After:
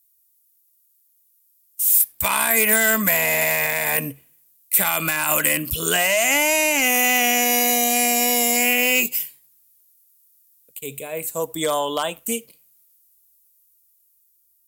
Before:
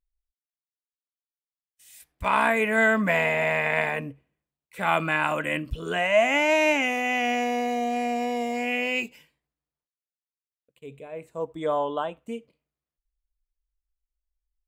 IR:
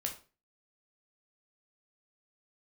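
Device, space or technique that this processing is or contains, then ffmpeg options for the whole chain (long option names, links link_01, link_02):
FM broadcast chain: -filter_complex "[0:a]highpass=78,dynaudnorm=framelen=580:gausssize=7:maxgain=4dB,acrossover=split=1600|4200[link_01][link_02][link_03];[link_01]acompressor=threshold=-24dB:ratio=4[link_04];[link_02]acompressor=threshold=-31dB:ratio=4[link_05];[link_03]acompressor=threshold=-47dB:ratio=4[link_06];[link_04][link_05][link_06]amix=inputs=3:normalize=0,aemphasis=mode=production:type=75fm,alimiter=limit=-15dB:level=0:latency=1:release=62,asoftclip=type=hard:threshold=-18.5dB,lowpass=frequency=15000:width=0.5412,lowpass=frequency=15000:width=1.3066,aemphasis=mode=production:type=75fm,volume=4.5dB"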